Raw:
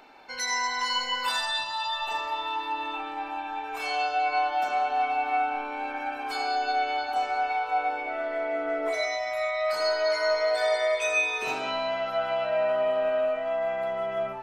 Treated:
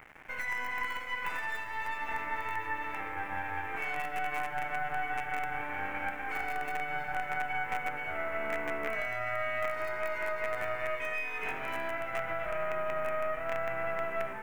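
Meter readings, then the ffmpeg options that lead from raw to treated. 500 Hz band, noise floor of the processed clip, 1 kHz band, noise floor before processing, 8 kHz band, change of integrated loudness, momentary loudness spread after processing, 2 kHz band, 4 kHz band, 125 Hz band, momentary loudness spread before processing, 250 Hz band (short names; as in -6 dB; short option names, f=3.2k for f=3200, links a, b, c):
-9.5 dB, -39 dBFS, -8.0 dB, -36 dBFS, -16.5 dB, -7.0 dB, 3 LU, -2.5 dB, -16.5 dB, n/a, 7 LU, -5.0 dB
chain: -af "alimiter=limit=-23.5dB:level=0:latency=1:release=445,acrusher=bits=5:dc=4:mix=0:aa=0.000001,highshelf=f=3k:t=q:w=3:g=-12.5"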